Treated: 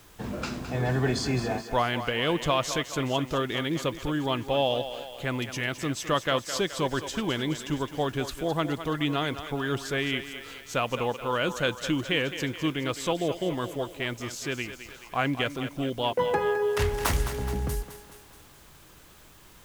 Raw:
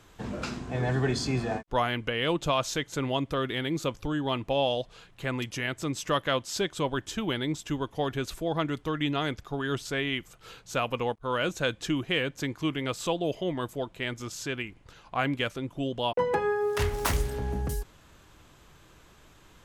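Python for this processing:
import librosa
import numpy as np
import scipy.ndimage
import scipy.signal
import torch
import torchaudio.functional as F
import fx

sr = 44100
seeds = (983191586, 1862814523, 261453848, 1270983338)

p1 = fx.quant_dither(x, sr, seeds[0], bits=8, dither='triangular')
p2 = x + (p1 * librosa.db_to_amplitude(-9.0))
p3 = fx.echo_thinned(p2, sr, ms=212, feedback_pct=58, hz=320.0, wet_db=-10.0)
y = p3 * librosa.db_to_amplitude(-1.5)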